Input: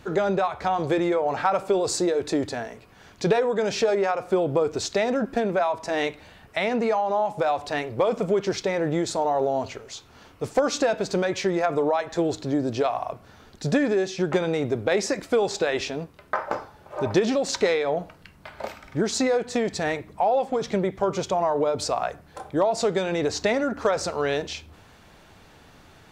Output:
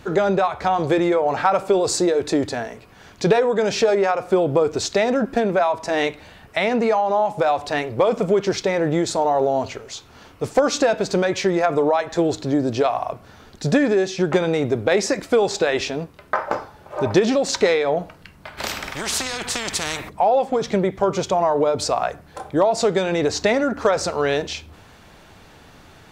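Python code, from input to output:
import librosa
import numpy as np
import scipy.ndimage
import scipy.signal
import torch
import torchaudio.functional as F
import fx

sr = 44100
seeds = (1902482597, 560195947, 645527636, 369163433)

y = fx.spectral_comp(x, sr, ratio=4.0, at=(18.57, 20.08), fade=0.02)
y = y * librosa.db_to_amplitude(4.5)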